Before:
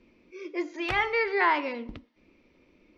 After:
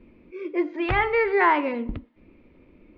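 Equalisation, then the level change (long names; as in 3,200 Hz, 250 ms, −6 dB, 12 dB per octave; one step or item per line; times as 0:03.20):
high-frequency loss of the air 380 metres
low-shelf EQ 210 Hz +7 dB
+6.0 dB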